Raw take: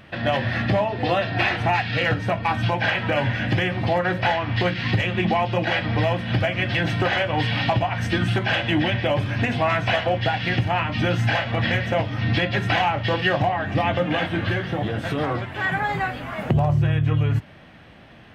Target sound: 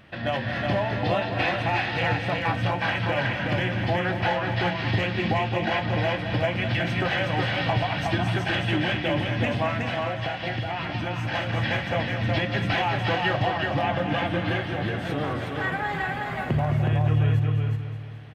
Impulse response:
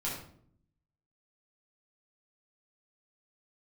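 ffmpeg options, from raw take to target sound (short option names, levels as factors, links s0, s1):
-filter_complex "[0:a]asplit=2[s0][s1];[s1]aecho=0:1:211|422|633|844|1055|1266:0.335|0.171|0.0871|0.0444|0.0227|0.0116[s2];[s0][s2]amix=inputs=2:normalize=0,asettb=1/sr,asplit=3[s3][s4][s5];[s3]atrim=end=9.684[s6];[s4]atrim=start=9.68:end=11.34,asetpts=PTS-STARTPTS,afade=t=in:d=0.004:c=qsin,afade=t=out:st=1.656:d=0.004:c=qsin,acompressor=threshold=0.0794:ratio=6[s7];[s5]atrim=start=11.336[s8];[s6][s7]acrossfade=d=0.004:c1=hsin:c2=qsin[s9];[s9][s8]acrossfade=d=0.004:c1=qsin:c2=hsin,asplit=2[s10][s11];[s11]aecho=0:1:367:0.668[s12];[s10][s12]amix=inputs=2:normalize=0,volume=0.562"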